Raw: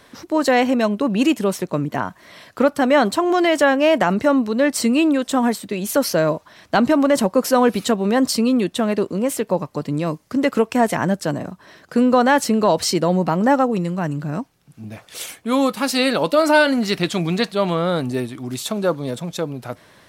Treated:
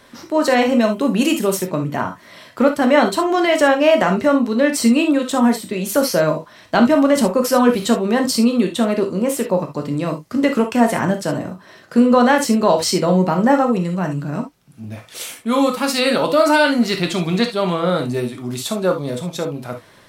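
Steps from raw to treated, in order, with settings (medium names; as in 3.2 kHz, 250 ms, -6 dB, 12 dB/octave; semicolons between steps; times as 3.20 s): 0.89–1.59 s: treble shelf 7.5 kHz +11 dB; gated-style reverb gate 90 ms flat, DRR 3.5 dB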